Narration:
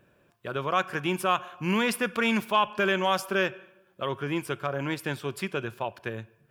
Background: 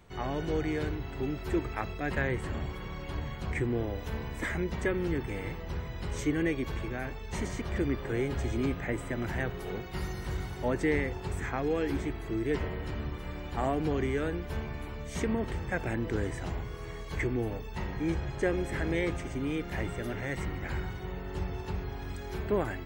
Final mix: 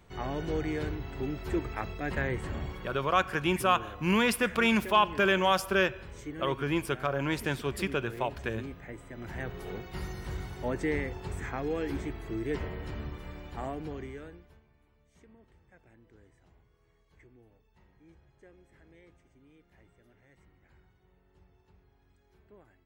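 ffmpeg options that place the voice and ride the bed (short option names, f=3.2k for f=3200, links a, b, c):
-filter_complex "[0:a]adelay=2400,volume=0dB[a];[1:a]volume=7.5dB,afade=t=out:st=2.68:d=0.5:silence=0.316228,afade=t=in:st=9.12:d=0.47:silence=0.375837,afade=t=out:st=13.01:d=1.59:silence=0.0530884[b];[a][b]amix=inputs=2:normalize=0"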